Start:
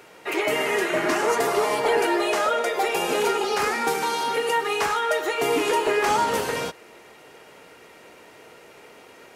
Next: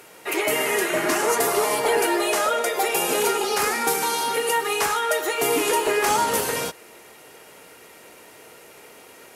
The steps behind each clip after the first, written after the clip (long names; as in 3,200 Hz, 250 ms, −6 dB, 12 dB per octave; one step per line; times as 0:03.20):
parametric band 12,000 Hz +12.5 dB 1.3 octaves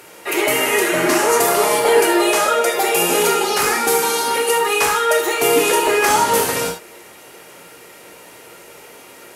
reverb whose tail is shaped and stops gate 100 ms flat, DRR 4 dB
surface crackle 26 per second −49 dBFS
level +4 dB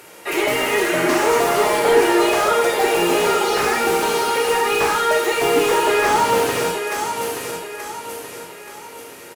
repeating echo 878 ms, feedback 42%, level −8 dB
slew-rate limiting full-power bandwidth 340 Hz
level −1 dB